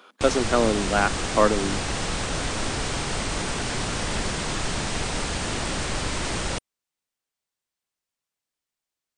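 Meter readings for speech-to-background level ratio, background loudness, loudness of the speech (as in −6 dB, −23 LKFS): 4.0 dB, −27.5 LKFS, −23.5 LKFS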